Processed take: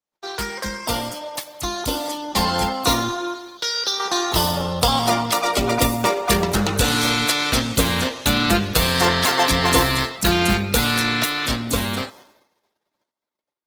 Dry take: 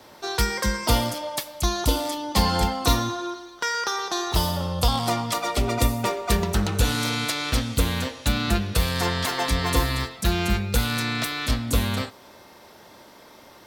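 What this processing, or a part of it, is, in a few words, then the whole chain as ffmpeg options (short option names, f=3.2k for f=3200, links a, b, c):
video call: -filter_complex "[0:a]asettb=1/sr,asplit=3[a][b][c];[a]atrim=end=3.574[d];[b]atrim=start=3.57:end=4,asetpts=PTS-STARTPTS,afade=t=in:d=0.004:c=qsin,afade=t=out:st=0.426:d=0.004:c=qsin,equalizer=f=250:t=o:w=1:g=-9,equalizer=f=1k:t=o:w=1:g=-12,equalizer=f=2k:t=o:w=1:g=-11,equalizer=f=4k:t=o:w=1:g=11,equalizer=f=8k:t=o:w=1:g=-8[e];[c]atrim=start=3.996[f];[d][e]acrossfade=d=0.004:c1=hsin:c2=qsin[g];[g][f]acrossfade=d=0.004:c1=qsin:c2=hsin,highpass=f=180:p=1,dynaudnorm=f=310:g=17:m=16dB,agate=range=-45dB:threshold=-43dB:ratio=16:detection=peak,volume=-1dB" -ar 48000 -c:a libopus -b:a 16k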